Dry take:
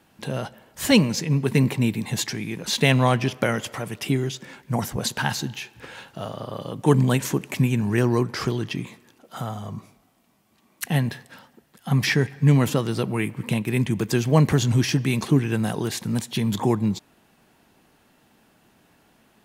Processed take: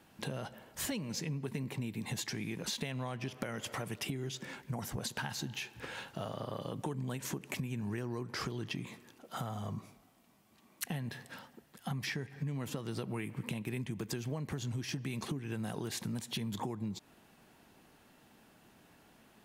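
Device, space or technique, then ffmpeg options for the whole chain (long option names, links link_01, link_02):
serial compression, peaks first: -af "acompressor=threshold=-26dB:ratio=6,acompressor=threshold=-34dB:ratio=2.5,volume=-3dB"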